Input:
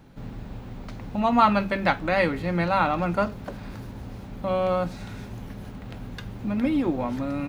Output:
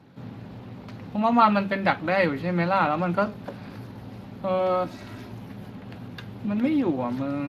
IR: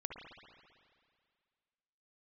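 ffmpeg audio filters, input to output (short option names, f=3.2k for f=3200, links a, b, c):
-filter_complex "[0:a]equalizer=f=73:t=o:w=0.53:g=-6.5,asplit=3[a][b][c];[a]afade=t=out:st=4.58:d=0.02[d];[b]aecho=1:1:3.1:0.59,afade=t=in:st=4.58:d=0.02,afade=t=out:st=5.31:d=0.02[e];[c]afade=t=in:st=5.31:d=0.02[f];[d][e][f]amix=inputs=3:normalize=0" -ar 32000 -c:a libspeex -b:a 24k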